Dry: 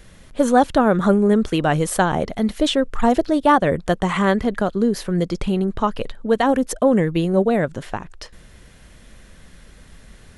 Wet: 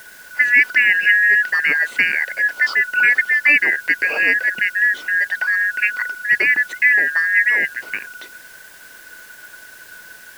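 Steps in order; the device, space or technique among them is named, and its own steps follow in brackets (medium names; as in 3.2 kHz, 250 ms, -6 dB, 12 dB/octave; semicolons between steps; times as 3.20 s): split-band scrambled radio (four frequency bands reordered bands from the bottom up 2143; band-pass 370–3100 Hz; white noise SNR 27 dB); trim +2 dB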